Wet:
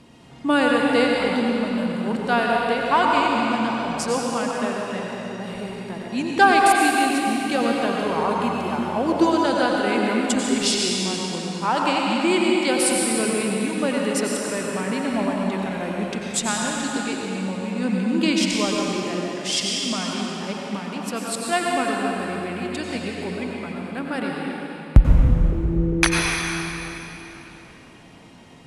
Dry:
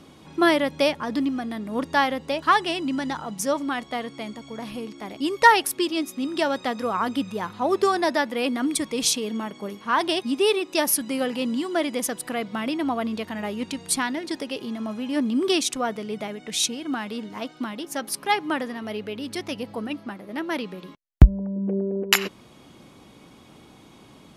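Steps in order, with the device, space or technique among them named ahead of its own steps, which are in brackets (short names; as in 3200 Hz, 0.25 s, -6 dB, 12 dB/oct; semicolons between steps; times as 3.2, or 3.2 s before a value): slowed and reverbed (varispeed -15%; reverb RT60 3.5 s, pre-delay 85 ms, DRR -2.5 dB); gain -1 dB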